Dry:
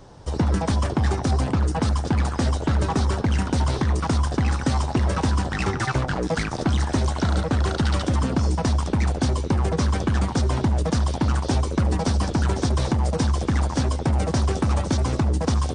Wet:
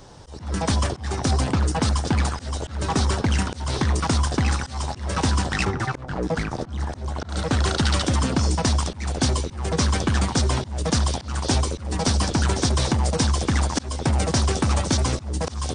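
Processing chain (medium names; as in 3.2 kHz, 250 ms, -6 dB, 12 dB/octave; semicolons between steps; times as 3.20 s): treble shelf 2 kHz +7.5 dB, from 5.65 s -5.5 dB, from 7.29 s +9 dB; slow attack 248 ms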